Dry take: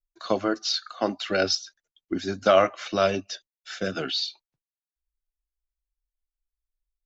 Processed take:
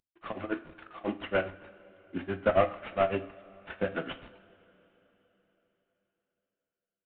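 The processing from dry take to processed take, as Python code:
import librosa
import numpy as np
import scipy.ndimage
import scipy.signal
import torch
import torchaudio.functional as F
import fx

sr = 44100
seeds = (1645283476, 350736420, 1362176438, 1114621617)

y = fx.cvsd(x, sr, bps=16000)
y = y * (1.0 - 1.0 / 2.0 + 1.0 / 2.0 * np.cos(2.0 * np.pi * 7.3 * (np.arange(len(y)) / sr)))
y = fx.rev_double_slope(y, sr, seeds[0], early_s=0.41, late_s=4.1, knee_db=-20, drr_db=8.0)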